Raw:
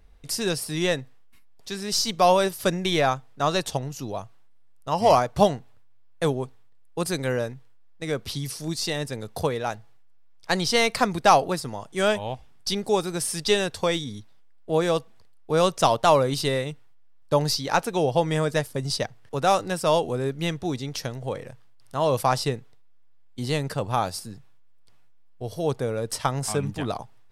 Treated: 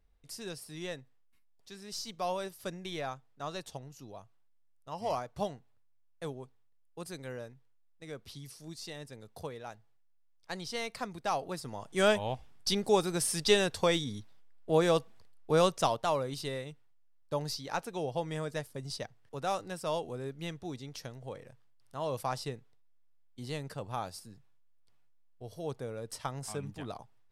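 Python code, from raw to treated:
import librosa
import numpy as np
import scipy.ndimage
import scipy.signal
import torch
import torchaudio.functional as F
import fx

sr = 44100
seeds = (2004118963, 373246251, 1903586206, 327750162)

y = fx.gain(x, sr, db=fx.line((11.31, -16.0), (11.96, -3.5), (15.53, -3.5), (16.08, -12.5)))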